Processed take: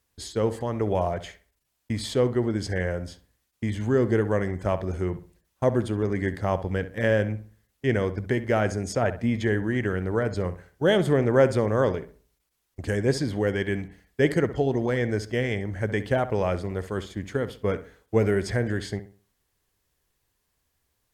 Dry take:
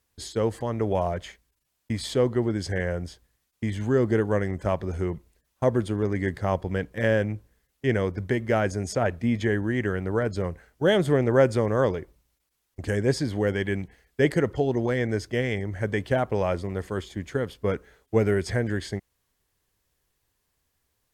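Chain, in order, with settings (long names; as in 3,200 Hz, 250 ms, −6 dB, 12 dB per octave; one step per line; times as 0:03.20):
feedback echo with a low-pass in the loop 65 ms, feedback 34%, low-pass 2,400 Hz, level −12.5 dB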